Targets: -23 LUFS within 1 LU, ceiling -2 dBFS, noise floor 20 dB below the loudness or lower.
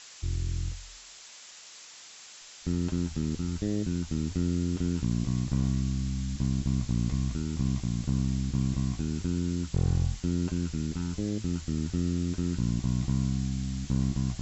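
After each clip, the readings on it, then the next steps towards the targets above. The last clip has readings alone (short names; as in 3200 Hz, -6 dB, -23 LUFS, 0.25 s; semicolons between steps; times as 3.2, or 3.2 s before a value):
clipped 0.4%; flat tops at -19.0 dBFS; noise floor -49 dBFS; noise floor target -51 dBFS; loudness -30.5 LUFS; peak -19.0 dBFS; loudness target -23.0 LUFS
-> clip repair -19 dBFS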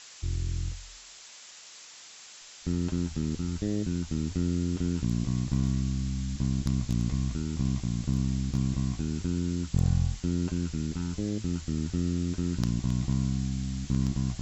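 clipped 0.0%; noise floor -49 dBFS; noise floor target -51 dBFS
-> denoiser 6 dB, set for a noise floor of -49 dBFS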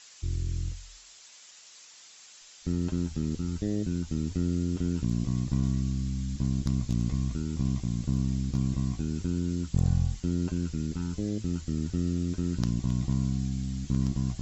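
noise floor -52 dBFS; loudness -30.5 LUFS; peak -10.5 dBFS; loudness target -23.0 LUFS
-> gain +7.5 dB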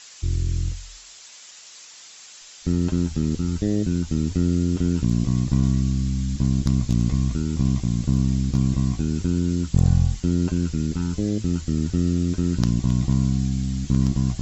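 loudness -23.0 LUFS; peak -3.0 dBFS; noise floor -45 dBFS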